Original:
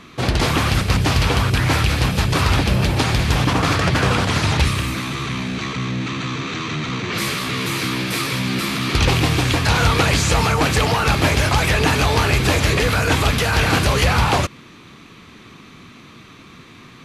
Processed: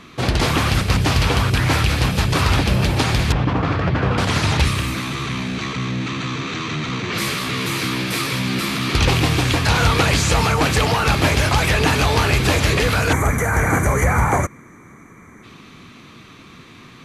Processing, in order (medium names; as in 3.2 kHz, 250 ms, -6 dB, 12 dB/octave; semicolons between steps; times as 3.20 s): 3.32–4.18 s: tape spacing loss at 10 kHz 30 dB; 13.12–15.43 s: time-frequency box 2.4–5.8 kHz -22 dB